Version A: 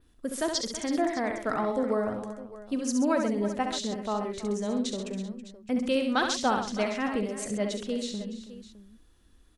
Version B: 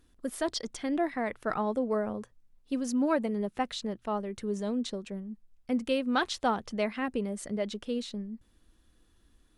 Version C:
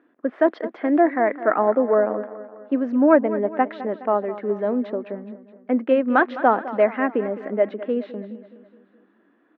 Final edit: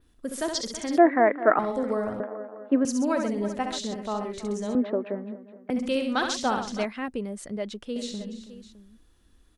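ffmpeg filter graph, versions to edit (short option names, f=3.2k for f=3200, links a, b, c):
-filter_complex "[2:a]asplit=3[a][b][c];[0:a]asplit=5[d][e][f][g][h];[d]atrim=end=0.982[i];[a]atrim=start=0.978:end=1.592[j];[e]atrim=start=1.588:end=2.202[k];[b]atrim=start=2.198:end=2.852[l];[f]atrim=start=2.848:end=4.752[m];[c]atrim=start=4.748:end=5.702[n];[g]atrim=start=5.698:end=6.852[o];[1:a]atrim=start=6.848:end=7.962[p];[h]atrim=start=7.958[q];[i][j]acrossfade=d=0.004:c1=hsin:c2=hsin[r];[r][k]acrossfade=d=0.004:c1=hsin:c2=hsin[s];[s][l]acrossfade=d=0.004:c1=hsin:c2=hsin[t];[t][m]acrossfade=d=0.004:c1=hsin:c2=hsin[u];[u][n]acrossfade=d=0.004:c1=hsin:c2=hsin[v];[v][o]acrossfade=d=0.004:c1=hsin:c2=hsin[w];[w][p]acrossfade=d=0.004:c1=hsin:c2=hsin[x];[x][q]acrossfade=d=0.004:c1=hsin:c2=hsin"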